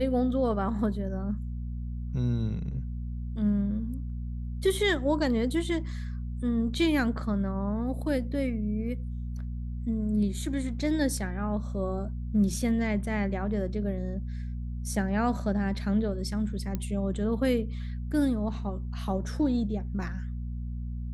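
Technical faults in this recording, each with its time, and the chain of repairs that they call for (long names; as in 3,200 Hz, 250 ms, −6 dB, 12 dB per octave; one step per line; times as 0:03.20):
mains hum 60 Hz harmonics 4 −34 dBFS
0:16.75: click −18 dBFS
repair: click removal
hum removal 60 Hz, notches 4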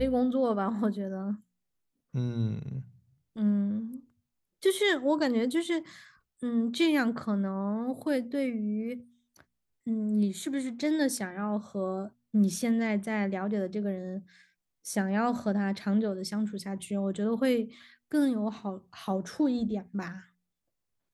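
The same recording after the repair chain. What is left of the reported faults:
none of them is left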